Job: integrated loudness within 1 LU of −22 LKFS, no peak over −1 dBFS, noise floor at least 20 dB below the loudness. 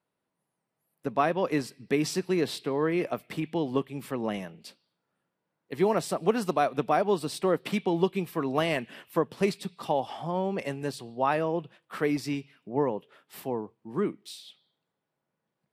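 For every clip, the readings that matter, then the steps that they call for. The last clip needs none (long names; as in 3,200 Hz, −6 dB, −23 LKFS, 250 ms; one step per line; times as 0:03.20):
integrated loudness −29.5 LKFS; sample peak −10.0 dBFS; target loudness −22.0 LKFS
→ level +7.5 dB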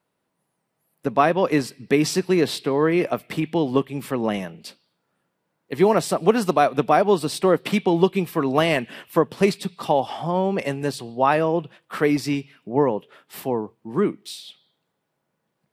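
integrated loudness −22.0 LKFS; sample peak −2.5 dBFS; background noise floor −76 dBFS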